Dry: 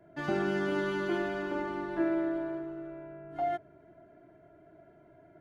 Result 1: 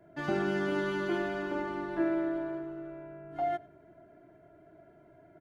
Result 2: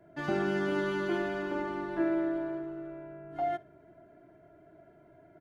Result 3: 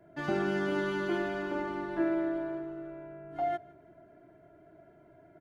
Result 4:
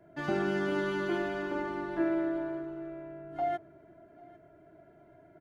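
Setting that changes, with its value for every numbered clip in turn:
repeating echo, delay time: 96, 61, 159, 799 milliseconds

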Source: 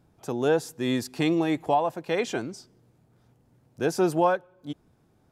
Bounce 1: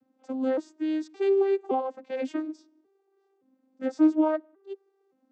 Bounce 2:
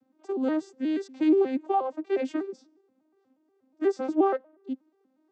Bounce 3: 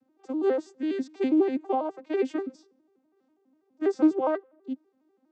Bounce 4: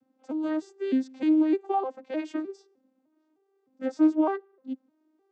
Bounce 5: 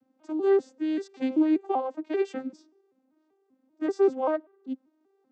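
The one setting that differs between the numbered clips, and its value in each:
vocoder with an arpeggio as carrier, a note every: 568, 120, 82, 305, 194 milliseconds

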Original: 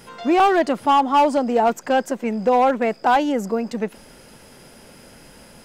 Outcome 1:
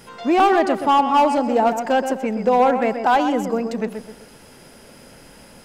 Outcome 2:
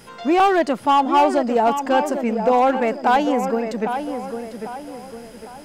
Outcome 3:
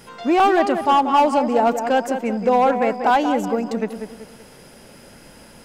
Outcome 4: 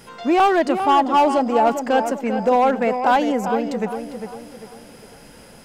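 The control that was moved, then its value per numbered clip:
tape delay, delay time: 127, 801, 189, 399 milliseconds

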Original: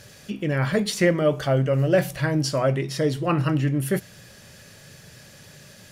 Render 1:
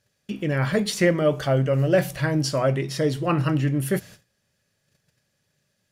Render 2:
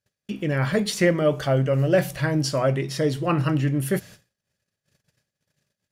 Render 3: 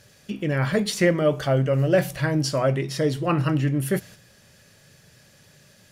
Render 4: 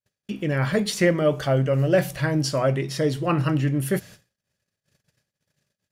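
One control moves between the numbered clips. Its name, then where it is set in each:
noise gate, range: −25, −40, −7, −52 decibels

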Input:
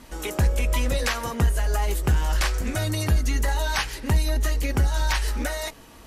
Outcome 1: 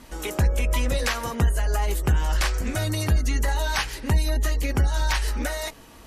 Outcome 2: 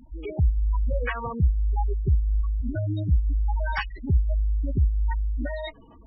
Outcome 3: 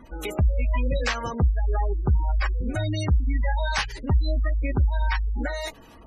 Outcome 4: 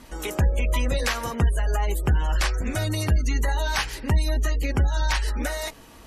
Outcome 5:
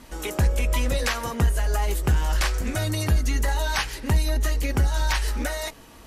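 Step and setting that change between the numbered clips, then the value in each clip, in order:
gate on every frequency bin, under each frame's peak: −45, −10, −20, −35, −60 decibels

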